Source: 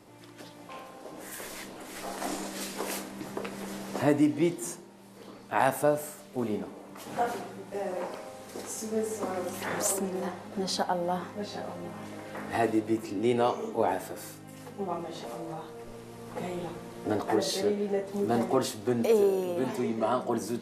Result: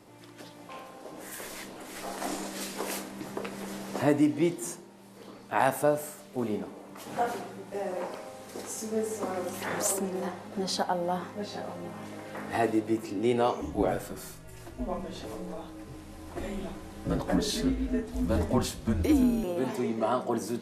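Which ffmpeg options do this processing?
-filter_complex "[0:a]asettb=1/sr,asplit=3[a][b][c];[a]atrim=end=13.614[d];[b]atrim=start=13.61:end=19.44,asetpts=PTS-STARTPTS,afade=t=in:d=0.004:c=qsin,afade=t=out:st=5.826:d=0.004:c=qsin,afreqshift=-150[e];[c]atrim=start=19.436[f];[d][e]acrossfade=d=0.004:c1=hsin:c2=qsin[g];[g][f]acrossfade=d=0.004:c1=qsin:c2=hsin"

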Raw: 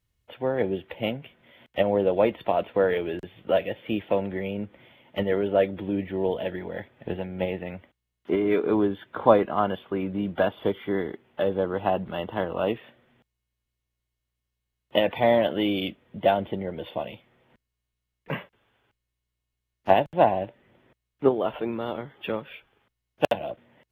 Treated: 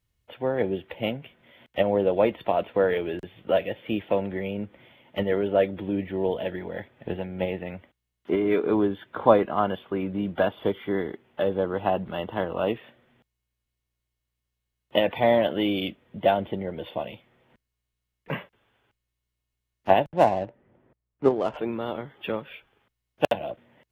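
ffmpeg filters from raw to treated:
-filter_complex "[0:a]asettb=1/sr,asplit=3[a][b][c];[a]atrim=end=20.074[d];[b]atrim=start=20.07:end=21.57,asetpts=PTS-STARTPTS,afade=t=in:d=0.004:c=qsin,afade=t=out:st=1.496:d=0.004:c=qsin,adynamicsmooth=sensitivity=6.5:basefreq=1.4k[e];[c]atrim=start=21.566[f];[d][e]acrossfade=d=0.004:c1=hsin:c2=qsin[g];[g][f]acrossfade=d=0.004:c1=qsin:c2=hsin"

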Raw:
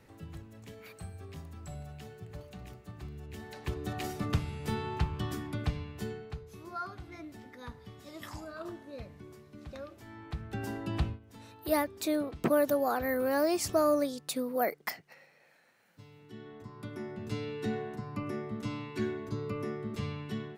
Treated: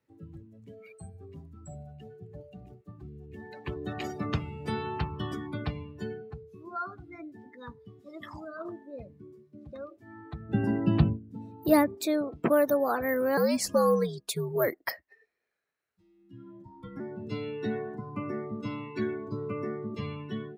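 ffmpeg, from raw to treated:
-filter_complex "[0:a]asettb=1/sr,asplit=3[a][b][c];[a]atrim=end=10.494[d];[b]atrim=start=10.49:end=11.95,asetpts=PTS-STARTPTS,afade=t=in:d=0.004:c=qsin,afade=t=out:st=1.456:d=0.004:c=qsin,equalizer=f=170:w=0.71:g=14[e];[c]atrim=start=11.946[f];[d][e]acrossfade=d=0.004:c1=hsin:c2=qsin[g];[g][f]acrossfade=d=0.004:c1=qsin:c2=hsin,asettb=1/sr,asplit=3[h][i][j];[h]atrim=end=13.374[k];[i]atrim=start=13.37:end=17,asetpts=PTS-STARTPTS,afade=t=in:d=0.004:c=qsin,afade=t=out:st=3.626:d=0.004:c=qsin,afreqshift=-99[l];[j]atrim=start=16.996[m];[k][l]acrossfade=d=0.004:c1=hsin:c2=qsin[n];[n][m]acrossfade=d=0.004:c1=qsin:c2=hsin,highpass=f=150:p=1,afftdn=nr=23:nf=-45,bandreject=f=760:w=19,volume=3.5dB"

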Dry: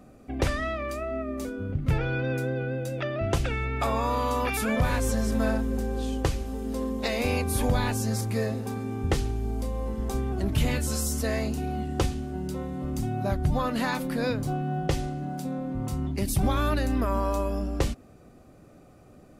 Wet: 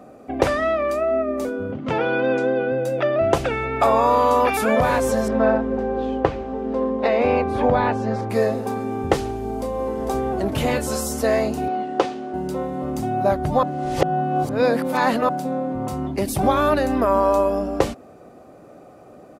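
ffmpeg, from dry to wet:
-filter_complex "[0:a]asettb=1/sr,asplit=3[a][b][c];[a]atrim=end=1.724[d];[b]atrim=start=1.72:end=2.72,asetpts=PTS-STARTPTS,afade=t=in:d=0.004:c=qsin,afade=t=out:st=0.996:d=0.004:c=qsin,highpass=140,equalizer=f=140:t=q:w=4:g=-6,equalizer=f=230:t=q:w=4:g=6,equalizer=f=1k:t=q:w=4:g=4,equalizer=f=3.1k:t=q:w=4:g=6,lowpass=f=7.2k:w=0.5412,lowpass=f=7.2k:w=1.3066[e];[c]atrim=start=2.716[f];[d][e]acrossfade=d=0.004:c1=hsin:c2=qsin[g];[g][f]acrossfade=d=0.004:c1=qsin:c2=hsin,asettb=1/sr,asplit=3[h][i][j];[h]atrim=end=5.284[k];[i]atrim=start=5.28:end=8.3,asetpts=PTS-STARTPTS,afade=t=in:d=0.004:c=qsin,afade=t=out:st=3.016:d=0.004:c=qsin,lowpass=2.6k[l];[j]atrim=start=8.296[m];[k][l]acrossfade=d=0.004:c1=hsin:c2=qsin[n];[n][m]acrossfade=d=0.004:c1=qsin:c2=hsin,asplit=2[o][p];[p]afade=t=in:st=9.34:d=0.01,afade=t=out:st=9.93:d=0.01,aecho=0:1:450|900|1350|1800|2250|2700:0.446684|0.223342|0.111671|0.0558354|0.0279177|0.0139589[q];[o][q]amix=inputs=2:normalize=0,asettb=1/sr,asplit=3[r][s][t];[r]atrim=end=11.684[u];[s]atrim=start=11.68:end=12.34,asetpts=PTS-STARTPTS,afade=t=in:d=0.004:c=qsin,afade=t=out:st=0.656:d=0.004:c=qsin,highpass=280,lowpass=5k[v];[t]atrim=start=12.336[w];[u][v]acrossfade=d=0.004:c1=hsin:c2=qsin[x];[x][w]acrossfade=d=0.004:c1=qsin:c2=hsin,asplit=3[y][z][aa];[y]atrim=end=13.632[ab];[z]atrim=start=13.628:end=15.292,asetpts=PTS-STARTPTS,areverse[ac];[aa]atrim=start=15.288[ad];[ab][ac]acrossfade=d=0.004:c1=hsin:c2=hsin[ae];[ae][ad]acrossfade=d=0.004:c1=hsin:c2=hsin,highpass=f=140:p=1,equalizer=f=660:w=0.54:g=11,volume=2dB"

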